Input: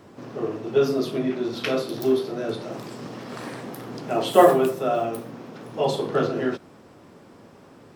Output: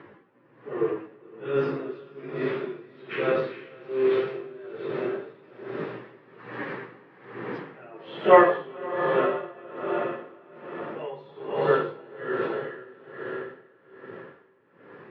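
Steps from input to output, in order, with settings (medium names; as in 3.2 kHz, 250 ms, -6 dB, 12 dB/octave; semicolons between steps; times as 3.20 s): dynamic bell 260 Hz, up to -5 dB, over -36 dBFS, Q 4; in parallel at -7.5 dB: saturation -12 dBFS, distortion -13 dB; on the sum: plain phase-vocoder stretch 1.9×; cabinet simulation 170–2700 Hz, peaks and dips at 240 Hz -9 dB, 680 Hz -9 dB, 1.8 kHz +6 dB; echo that smears into a reverb 503 ms, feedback 52%, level -3.5 dB; logarithmic tremolo 1.2 Hz, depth 21 dB; trim +2 dB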